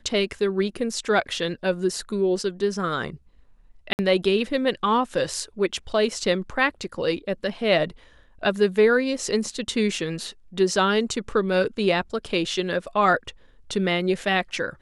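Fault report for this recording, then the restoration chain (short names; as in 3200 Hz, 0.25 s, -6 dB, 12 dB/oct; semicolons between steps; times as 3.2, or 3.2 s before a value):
3.93–3.99 gap 59 ms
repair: interpolate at 3.93, 59 ms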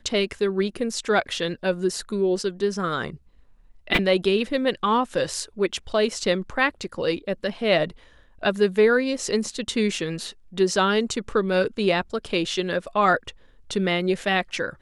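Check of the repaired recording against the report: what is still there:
none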